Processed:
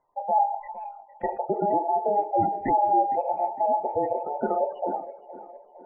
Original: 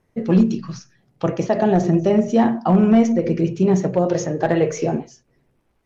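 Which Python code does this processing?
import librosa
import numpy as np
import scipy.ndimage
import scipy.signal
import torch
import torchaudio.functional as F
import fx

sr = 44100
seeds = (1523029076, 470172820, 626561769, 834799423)

p1 = fx.band_invert(x, sr, width_hz=1000)
p2 = scipy.signal.sosfilt(scipy.signal.butter(4, 2500.0, 'lowpass', fs=sr, output='sos'), p1)
p3 = fx.spec_gate(p2, sr, threshold_db=-20, keep='strong')
p4 = p3 + fx.echo_tape(p3, sr, ms=461, feedback_pct=57, wet_db=-14, lp_hz=1600.0, drive_db=4.0, wow_cents=39, dry=0)
y = p4 * 10.0 ** (-7.5 / 20.0)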